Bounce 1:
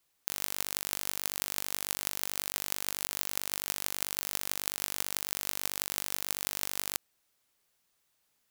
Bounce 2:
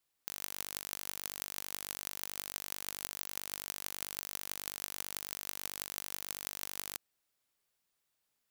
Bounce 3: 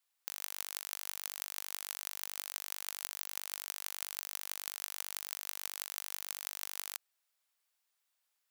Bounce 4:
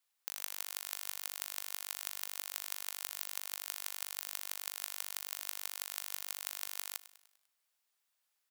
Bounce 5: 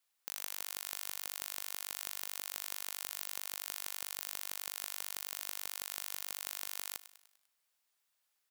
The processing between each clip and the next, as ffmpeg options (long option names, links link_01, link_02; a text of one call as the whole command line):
ffmpeg -i in.wav -af "bandreject=frequency=6200:width=26,volume=-7dB" out.wav
ffmpeg -i in.wav -af "highpass=710" out.wav
ffmpeg -i in.wav -af "aecho=1:1:99|198|297|396|495:0.158|0.0824|0.0429|0.0223|0.0116" out.wav
ffmpeg -i in.wav -af "volume=13.5dB,asoftclip=hard,volume=-13.5dB,volume=1dB" out.wav